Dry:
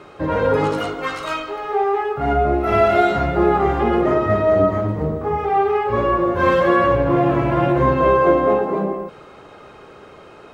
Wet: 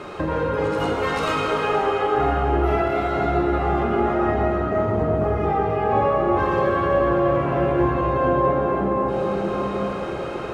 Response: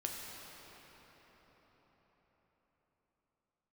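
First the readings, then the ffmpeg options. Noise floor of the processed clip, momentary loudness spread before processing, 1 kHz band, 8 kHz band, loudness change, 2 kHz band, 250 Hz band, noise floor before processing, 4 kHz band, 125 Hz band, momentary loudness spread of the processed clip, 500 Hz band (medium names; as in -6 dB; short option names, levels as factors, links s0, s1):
-28 dBFS, 9 LU, -2.5 dB, no reading, -3.5 dB, -3.0 dB, -2.5 dB, -43 dBFS, -1.0 dB, -2.0 dB, 5 LU, -3.0 dB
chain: -filter_complex "[0:a]acompressor=threshold=0.0355:ratio=12[s0];[1:a]atrim=start_sample=2205,asetrate=27342,aresample=44100[s1];[s0][s1]afir=irnorm=-1:irlink=0,volume=2.11"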